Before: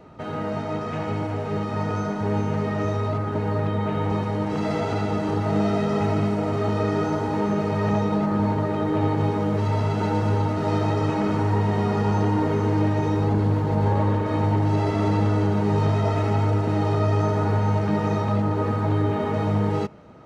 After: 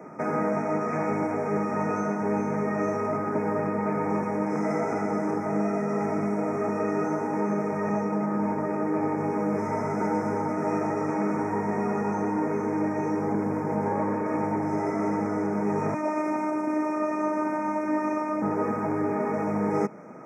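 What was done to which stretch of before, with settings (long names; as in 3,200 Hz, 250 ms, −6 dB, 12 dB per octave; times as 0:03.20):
0:15.94–0:18.42: phases set to zero 307 Hz
whole clip: high-pass filter 170 Hz 24 dB per octave; brick-wall band-stop 2,500–5,100 Hz; speech leveller; level −1.5 dB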